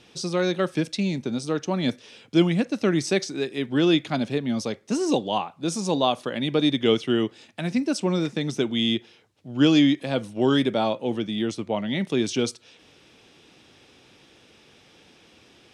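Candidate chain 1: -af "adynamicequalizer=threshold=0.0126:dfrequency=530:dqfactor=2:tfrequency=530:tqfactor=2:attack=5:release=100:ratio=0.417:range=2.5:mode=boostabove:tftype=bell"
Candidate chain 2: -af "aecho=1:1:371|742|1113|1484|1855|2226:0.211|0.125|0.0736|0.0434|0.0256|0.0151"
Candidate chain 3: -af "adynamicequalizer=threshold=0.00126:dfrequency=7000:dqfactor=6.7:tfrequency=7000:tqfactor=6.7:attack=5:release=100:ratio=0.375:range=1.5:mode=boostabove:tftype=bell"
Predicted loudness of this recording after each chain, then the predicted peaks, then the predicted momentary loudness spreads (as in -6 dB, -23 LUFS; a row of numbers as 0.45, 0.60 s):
-23.0, -24.0, -24.5 LUFS; -5.0, -6.5, -6.5 dBFS; 8, 8, 8 LU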